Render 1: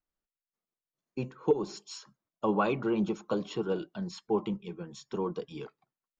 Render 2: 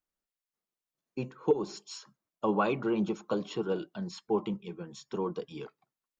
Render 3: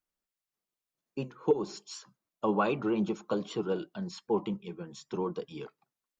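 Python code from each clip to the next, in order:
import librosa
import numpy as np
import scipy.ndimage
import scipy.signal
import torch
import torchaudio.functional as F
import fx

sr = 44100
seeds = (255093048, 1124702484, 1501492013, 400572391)

y1 = fx.low_shelf(x, sr, hz=80.0, db=-6.0)
y2 = fx.record_warp(y1, sr, rpm=78.0, depth_cents=100.0)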